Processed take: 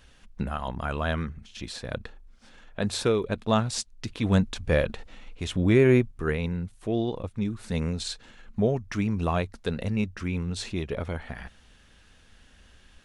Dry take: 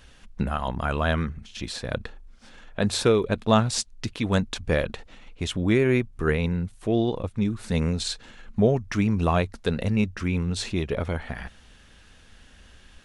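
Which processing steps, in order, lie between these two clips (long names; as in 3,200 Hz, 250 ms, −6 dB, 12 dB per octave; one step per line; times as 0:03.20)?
0:04.09–0:06.12: harmonic and percussive parts rebalanced harmonic +7 dB
level −4 dB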